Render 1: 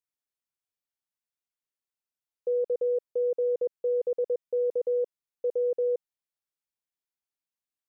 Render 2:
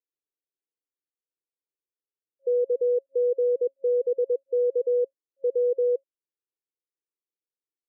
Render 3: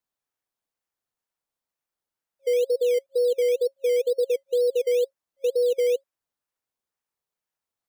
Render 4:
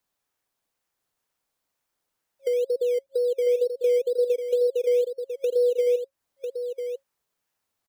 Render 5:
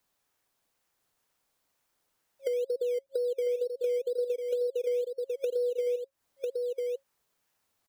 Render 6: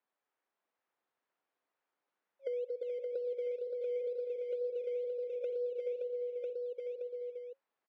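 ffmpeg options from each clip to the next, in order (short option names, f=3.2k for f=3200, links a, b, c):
-af "afftfilt=real='re*between(b*sr/4096,270,540)':imag='im*between(b*sr/4096,270,540)':win_size=4096:overlap=0.75,volume=3.5dB"
-filter_complex "[0:a]lowshelf=f=490:t=q:w=1.5:g=-12.5,asplit=2[a][b];[b]acrusher=samples=13:mix=1:aa=0.000001:lfo=1:lforange=7.8:lforate=2.1,volume=-6dB[c];[a][c]amix=inputs=2:normalize=0,volume=4.5dB"
-filter_complex "[0:a]acrossover=split=330[a][b];[b]acompressor=threshold=-36dB:ratio=10[c];[a][c]amix=inputs=2:normalize=0,aecho=1:1:998:0.447,volume=7.5dB"
-af "acompressor=threshold=-35dB:ratio=3,volume=3.5dB"
-filter_complex "[0:a]highpass=290,lowpass=2.2k,asplit=2[a][b];[b]aecho=0:1:65|222|359|429|572:0.112|0.106|0.266|0.251|0.447[c];[a][c]amix=inputs=2:normalize=0,volume=-6.5dB"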